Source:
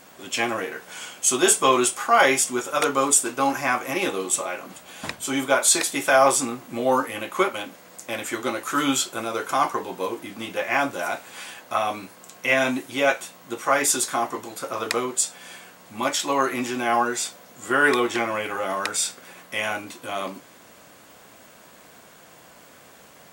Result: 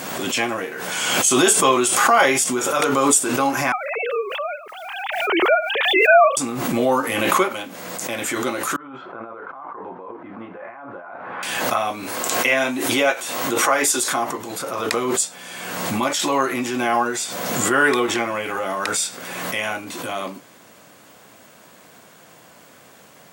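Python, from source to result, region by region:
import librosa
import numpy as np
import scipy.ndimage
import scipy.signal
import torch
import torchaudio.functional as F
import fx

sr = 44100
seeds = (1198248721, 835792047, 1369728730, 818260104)

y = fx.chain(x, sr, fx.sine_speech(),
    fx.quant_dither(seeds[0], bits=12, dither='triangular'), at=(3.72, 6.37))
y = fx.chain(y, sr, fx.ladder_lowpass(hz=1600.0, resonance_pct=30),
    fx.low_shelf(hz=360.0, db=-6.0),
    fx.over_compress(threshold_db=-40.0, ratio=-1.0), at=(8.76, 11.43))
y = fx.chain(y, sr, fx.highpass(hz=110.0, slope=12),
    fx.peak_eq(hz=170.0, db=-15.0, octaves=0.44), at=(12.03, 14.12))
y = scipy.signal.sosfilt(scipy.signal.butter(2, 100.0, 'highpass', fs=sr, output='sos'), y)
y = fx.low_shelf(y, sr, hz=160.0, db=4.5)
y = fx.pre_swell(y, sr, db_per_s=30.0)
y = y * 10.0 ** (1.0 / 20.0)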